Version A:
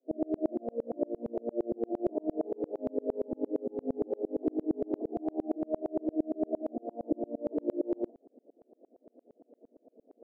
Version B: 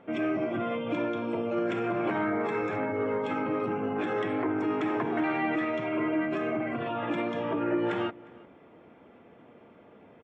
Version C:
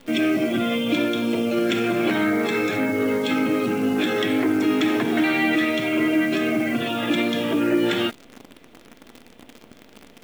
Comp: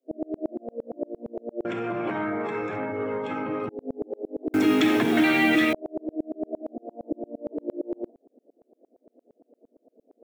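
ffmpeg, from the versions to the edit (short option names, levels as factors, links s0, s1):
-filter_complex "[0:a]asplit=3[s0][s1][s2];[s0]atrim=end=1.652[s3];[1:a]atrim=start=1.648:end=3.692[s4];[s1]atrim=start=3.688:end=4.542[s5];[2:a]atrim=start=4.538:end=5.732[s6];[s2]atrim=start=5.728[s7];[s3][s4]acrossfade=d=0.004:c1=hsin:c2=hsin[s8];[s8][s5]acrossfade=d=0.004:c1=hsin:c2=hsin[s9];[s9][s6]acrossfade=d=0.004:c1=hsin:c2=hsin[s10];[s10][s7]acrossfade=d=0.004:c1=hsin:c2=hsin"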